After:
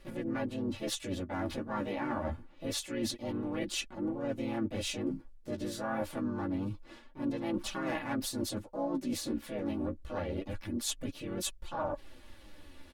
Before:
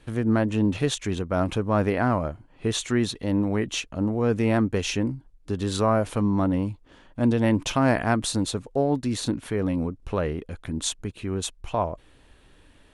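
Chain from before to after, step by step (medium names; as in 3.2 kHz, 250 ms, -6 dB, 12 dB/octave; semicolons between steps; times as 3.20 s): harmony voices +3 st -2 dB, +7 st -5 dB; flange 0.26 Hz, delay 5 ms, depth 9.5 ms, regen +22%; reverse; compression 6:1, threshold -34 dBFS, peak gain reduction 17 dB; reverse; comb 3.5 ms, depth 63%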